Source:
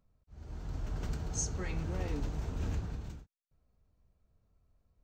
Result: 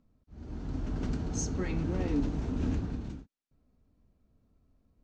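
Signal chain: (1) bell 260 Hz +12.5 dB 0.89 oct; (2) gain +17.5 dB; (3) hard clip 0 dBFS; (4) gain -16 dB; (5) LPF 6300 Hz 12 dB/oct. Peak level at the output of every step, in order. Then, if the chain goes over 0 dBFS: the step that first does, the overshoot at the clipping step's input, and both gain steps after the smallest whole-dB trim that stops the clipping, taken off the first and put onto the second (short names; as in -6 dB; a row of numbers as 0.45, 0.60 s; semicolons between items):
-20.5, -3.0, -3.0, -19.0, -19.0 dBFS; no overload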